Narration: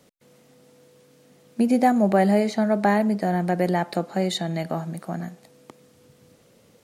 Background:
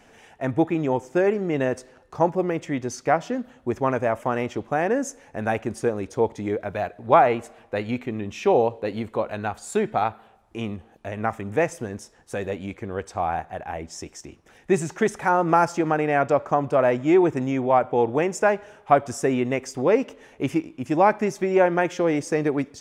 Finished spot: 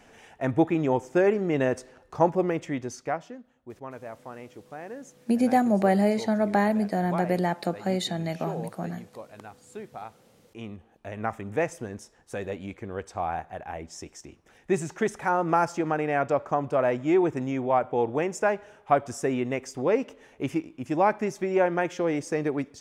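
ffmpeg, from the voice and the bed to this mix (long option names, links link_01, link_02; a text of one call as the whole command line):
ffmpeg -i stem1.wav -i stem2.wav -filter_complex "[0:a]adelay=3700,volume=-3dB[link_01];[1:a]volume=11.5dB,afade=type=out:start_time=2.43:duration=0.96:silence=0.158489,afade=type=in:start_time=10.15:duration=1.1:silence=0.237137[link_02];[link_01][link_02]amix=inputs=2:normalize=0" out.wav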